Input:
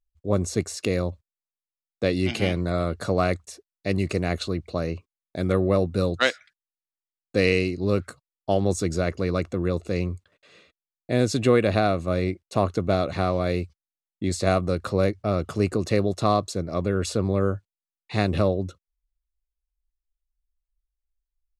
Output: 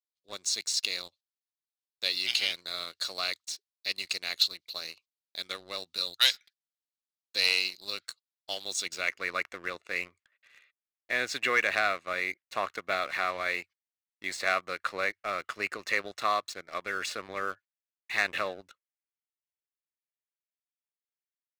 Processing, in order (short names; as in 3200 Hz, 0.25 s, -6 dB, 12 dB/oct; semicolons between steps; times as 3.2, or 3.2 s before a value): tilt +2 dB/oct; band-pass sweep 4100 Hz -> 1900 Hz, 8.63–9.24; sample leveller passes 2